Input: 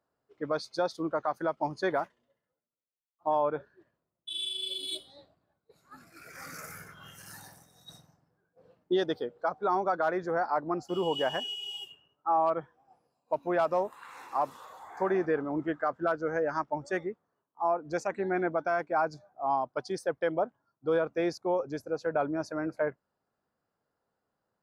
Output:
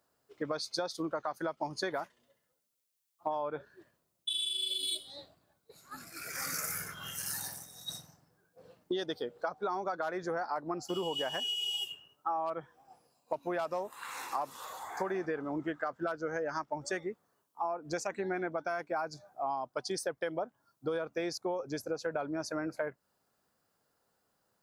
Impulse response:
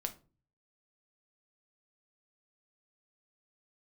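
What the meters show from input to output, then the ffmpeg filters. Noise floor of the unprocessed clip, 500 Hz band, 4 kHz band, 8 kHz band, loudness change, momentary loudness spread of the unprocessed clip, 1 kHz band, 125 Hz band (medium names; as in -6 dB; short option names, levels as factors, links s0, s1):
-85 dBFS, -6.0 dB, +2.0 dB, +9.0 dB, -5.0 dB, 14 LU, -6.0 dB, -4.5 dB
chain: -af "highshelf=f=3100:g=12,acompressor=threshold=0.0178:ratio=6,volume=1.41"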